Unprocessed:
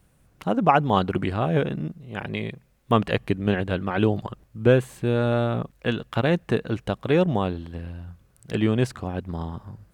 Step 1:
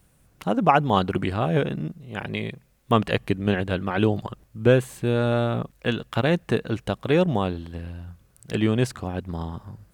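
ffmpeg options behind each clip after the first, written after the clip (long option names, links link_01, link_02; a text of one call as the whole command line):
ffmpeg -i in.wav -af "highshelf=frequency=4100:gain=5" out.wav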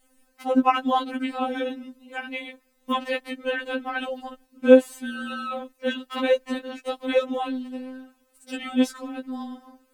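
ffmpeg -i in.wav -af "afftfilt=real='re*3.46*eq(mod(b,12),0)':imag='im*3.46*eq(mod(b,12),0)':win_size=2048:overlap=0.75,volume=1.5dB" out.wav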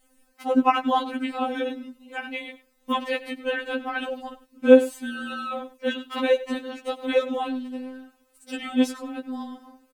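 ffmpeg -i in.wav -af "aecho=1:1:99:0.141" out.wav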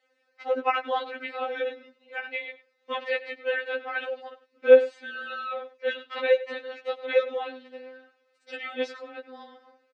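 ffmpeg -i in.wav -af "highpass=frequency=440:width=0.5412,highpass=frequency=440:width=1.3066,equalizer=frequency=470:width_type=q:width=4:gain=3,equalizer=frequency=700:width_type=q:width=4:gain=-7,equalizer=frequency=1000:width_type=q:width=4:gain=-8,equalizer=frequency=2000:width_type=q:width=4:gain=4,equalizer=frequency=3100:width_type=q:width=4:gain=-6,lowpass=frequency=4400:width=0.5412,lowpass=frequency=4400:width=1.3066" out.wav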